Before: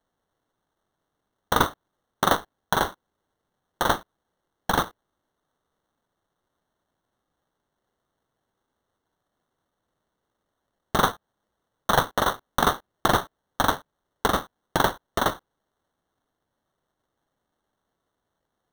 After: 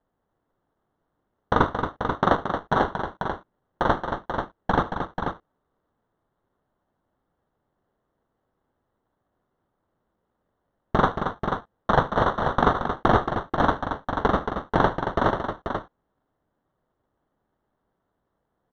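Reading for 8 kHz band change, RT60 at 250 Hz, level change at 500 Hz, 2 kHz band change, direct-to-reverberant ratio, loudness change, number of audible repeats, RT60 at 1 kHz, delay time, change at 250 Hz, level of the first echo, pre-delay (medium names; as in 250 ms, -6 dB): under -15 dB, no reverb, +4.0 dB, 0.0 dB, no reverb, +0.5 dB, 3, no reverb, 74 ms, +5.0 dB, -19.5 dB, no reverb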